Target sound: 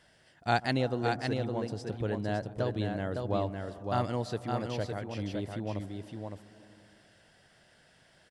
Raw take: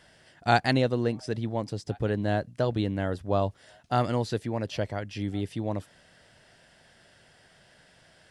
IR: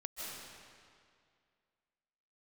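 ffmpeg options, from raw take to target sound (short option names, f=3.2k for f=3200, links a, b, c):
-filter_complex "[0:a]aecho=1:1:561:0.596,asplit=2[a][b];[1:a]atrim=start_sample=2205,lowpass=f=1.3k:w=0.5412,lowpass=f=1.3k:w=1.3066,adelay=138[c];[b][c]afir=irnorm=-1:irlink=0,volume=-14.5dB[d];[a][d]amix=inputs=2:normalize=0,volume=-5.5dB"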